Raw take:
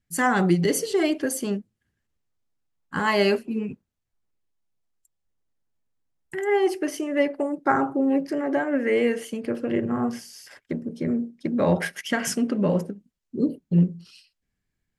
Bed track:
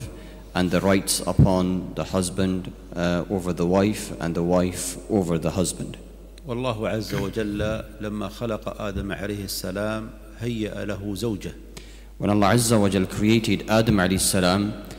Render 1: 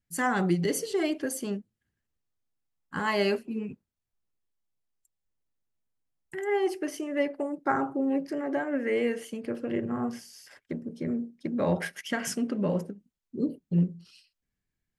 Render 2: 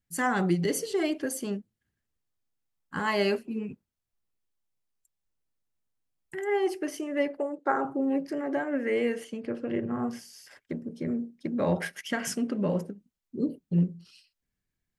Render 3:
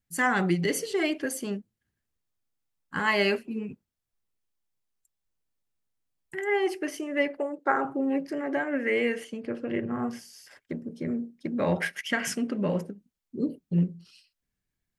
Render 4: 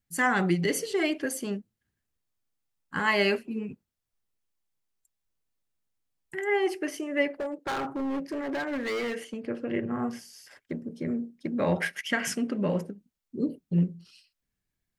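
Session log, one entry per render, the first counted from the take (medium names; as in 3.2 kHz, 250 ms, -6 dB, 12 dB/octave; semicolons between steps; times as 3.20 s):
trim -5.5 dB
7.37–7.85 s: cabinet simulation 310–8000 Hz, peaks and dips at 480 Hz +7 dB, 2.2 kHz -4 dB, 5.3 kHz -8 dB; 9.24–9.99 s: distance through air 59 m
dynamic bell 2.2 kHz, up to +7 dB, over -47 dBFS, Q 1.1
7.38–9.35 s: hard clipper -28 dBFS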